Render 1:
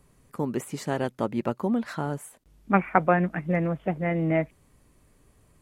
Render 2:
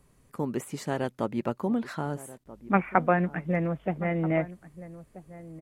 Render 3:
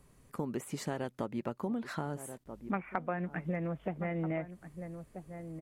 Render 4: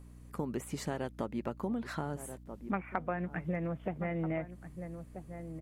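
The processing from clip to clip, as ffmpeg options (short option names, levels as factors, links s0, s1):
-filter_complex "[0:a]asplit=2[s0][s1];[s1]adelay=1283,volume=0.158,highshelf=f=4000:g=-28.9[s2];[s0][s2]amix=inputs=2:normalize=0,volume=0.794"
-af "acompressor=threshold=0.0224:ratio=4"
-af "aeval=exprs='val(0)+0.00282*(sin(2*PI*60*n/s)+sin(2*PI*2*60*n/s)/2+sin(2*PI*3*60*n/s)/3+sin(2*PI*4*60*n/s)/4+sin(2*PI*5*60*n/s)/5)':c=same"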